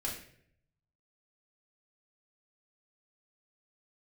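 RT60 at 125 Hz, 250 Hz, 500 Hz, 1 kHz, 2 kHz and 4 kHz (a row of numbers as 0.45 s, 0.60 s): 1.2 s, 0.80 s, 0.75 s, 0.50 s, 0.65 s, 0.50 s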